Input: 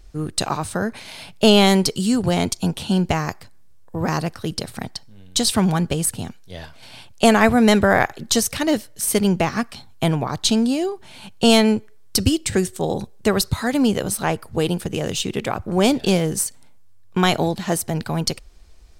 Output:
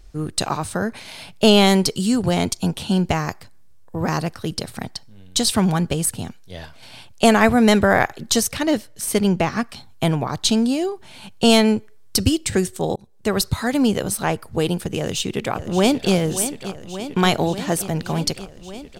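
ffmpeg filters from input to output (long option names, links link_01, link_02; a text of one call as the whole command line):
ffmpeg -i in.wav -filter_complex "[0:a]asettb=1/sr,asplit=3[link_01][link_02][link_03];[link_01]atrim=end=8.484[link_04];[link_02]atrim=start=8.48:end=9.69,asetpts=PTS-STARTPTS,afade=type=in:duration=0.004:curve=qsin,afade=type=out:start_time=1.206:duration=0.004:curve=qsin,highshelf=frequency=6900:gain=-5.5[link_05];[link_03]atrim=start=9.686[link_06];[link_04][link_05]acrossfade=duration=0.004:curve1=hsin:curve2=qsin[link_07];[link_07][link_06]acrossfade=duration=0.004:curve1=qsin:curve2=hsin,asplit=2[link_08][link_09];[link_09]afade=type=in:start_time=14.97:duration=0.01,afade=type=out:start_time=16.13:duration=0.01,aecho=0:1:580|1160|1740|2320|2900|3480|4060|4640|5220|5800|6380|6960:0.266073|0.212858|0.170286|0.136229|0.108983|0.0871866|0.0697493|0.0557994|0.0446396|0.0357116|0.0285693|0.0228555[link_10];[link_08][link_10]amix=inputs=2:normalize=0,asplit=2[link_11][link_12];[link_11]atrim=end=12.96,asetpts=PTS-STARTPTS,afade=type=out:start_time=12.956:duration=0.004:curve=hsin[link_13];[link_12]atrim=start=12.96,asetpts=PTS-STARTPTS,afade=type=in:duration=0.46[link_14];[link_13][link_14]concat=n=2:v=0:a=1" out.wav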